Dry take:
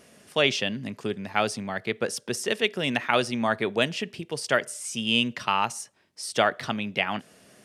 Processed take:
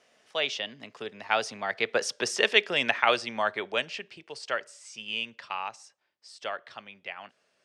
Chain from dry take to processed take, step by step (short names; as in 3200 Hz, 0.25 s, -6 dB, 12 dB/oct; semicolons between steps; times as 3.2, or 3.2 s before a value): Doppler pass-by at 2.31, 14 m/s, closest 8.3 m; three-band isolator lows -15 dB, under 450 Hz, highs -24 dB, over 7100 Hz; gain +5.5 dB